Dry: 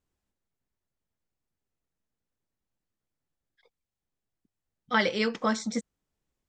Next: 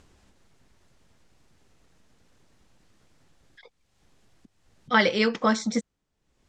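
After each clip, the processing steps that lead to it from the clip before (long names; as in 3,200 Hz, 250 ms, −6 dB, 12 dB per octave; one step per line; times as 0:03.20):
upward compression, threshold −46 dBFS
low-pass filter 7,400 Hz 12 dB per octave
level +4.5 dB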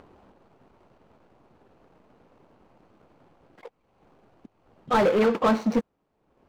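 running median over 25 samples
mid-hump overdrive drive 23 dB, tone 1,500 Hz, clips at −12 dBFS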